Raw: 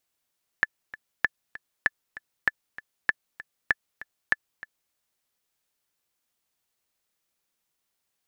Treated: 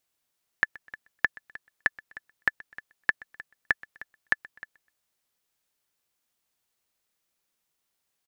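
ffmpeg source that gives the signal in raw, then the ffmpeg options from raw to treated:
-f lavfi -i "aevalsrc='pow(10,(-7-18*gte(mod(t,2*60/195),60/195))/20)*sin(2*PI*1740*mod(t,60/195))*exp(-6.91*mod(t,60/195)/0.03)':d=4.3:s=44100"
-af "aecho=1:1:126|252:0.075|0.027"

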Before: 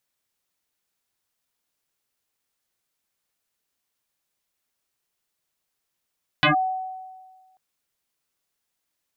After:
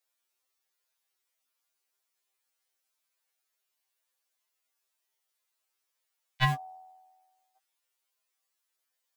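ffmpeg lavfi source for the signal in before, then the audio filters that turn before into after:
-f lavfi -i "aevalsrc='0.224*pow(10,-3*t/1.51)*sin(2*PI*751*t+6.9*clip(1-t/0.12,0,1)*sin(2*PI*0.6*751*t))':d=1.14:s=44100"
-filter_complex "[0:a]asubboost=boost=5:cutoff=110,acrossover=split=320|1400[s0][s1][s2];[s0]acrusher=bits=5:mix=0:aa=0.000001[s3];[s3][s1][s2]amix=inputs=3:normalize=0,afftfilt=real='re*2.45*eq(mod(b,6),0)':imag='im*2.45*eq(mod(b,6),0)':win_size=2048:overlap=0.75"

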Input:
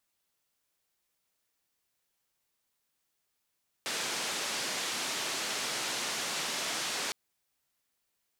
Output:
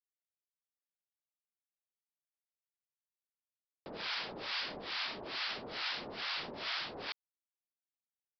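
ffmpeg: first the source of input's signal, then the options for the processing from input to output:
-f lavfi -i "anoisesrc=c=white:d=3.26:r=44100:seed=1,highpass=f=200,lowpass=f=6400,volume=-24.4dB"
-filter_complex "[0:a]aresample=11025,acrusher=bits=6:mix=0:aa=0.000001,aresample=44100,acrossover=split=800[s0][s1];[s0]aeval=exprs='val(0)*(1-1/2+1/2*cos(2*PI*2.3*n/s))':c=same[s2];[s1]aeval=exprs='val(0)*(1-1/2-1/2*cos(2*PI*2.3*n/s))':c=same[s3];[s2][s3]amix=inputs=2:normalize=0"

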